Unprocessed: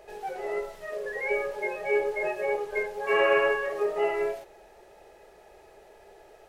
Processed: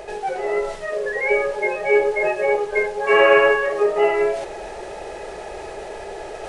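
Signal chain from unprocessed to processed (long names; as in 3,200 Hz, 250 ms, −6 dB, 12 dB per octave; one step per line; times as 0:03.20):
reversed playback
upward compression, threshold −30 dBFS
reversed playback
downsampling to 22,050 Hz
level +9 dB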